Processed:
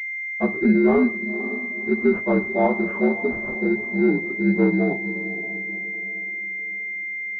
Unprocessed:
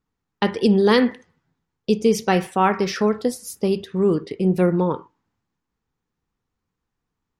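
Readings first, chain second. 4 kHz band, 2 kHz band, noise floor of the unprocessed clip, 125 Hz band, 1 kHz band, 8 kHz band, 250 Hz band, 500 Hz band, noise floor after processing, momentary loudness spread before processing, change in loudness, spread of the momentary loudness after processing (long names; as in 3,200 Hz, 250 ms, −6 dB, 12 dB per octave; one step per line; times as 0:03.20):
below −25 dB, +9.0 dB, −81 dBFS, −3.5 dB, −6.5 dB, below −25 dB, +1.0 dB, −2.0 dB, −30 dBFS, 8 LU, −2.0 dB, 9 LU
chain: partials spread apart or drawn together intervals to 76%
noise gate with hold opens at −36 dBFS
parametric band 82 Hz +9.5 dB 0.28 octaves
feedback delay with all-pass diffusion 530 ms, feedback 44%, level −13 dB
switching amplifier with a slow clock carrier 2,100 Hz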